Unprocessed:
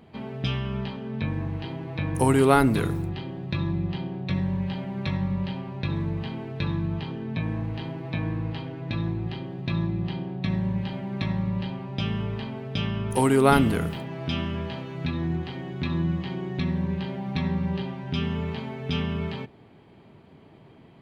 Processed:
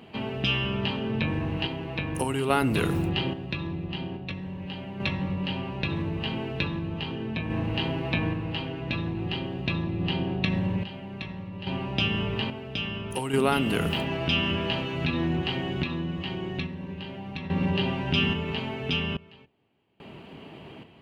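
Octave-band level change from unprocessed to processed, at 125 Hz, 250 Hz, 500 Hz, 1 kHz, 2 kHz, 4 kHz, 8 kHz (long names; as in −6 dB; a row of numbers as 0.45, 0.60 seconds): −3.0, −2.0, −2.5, −3.0, +4.0, +7.0, −4.0 decibels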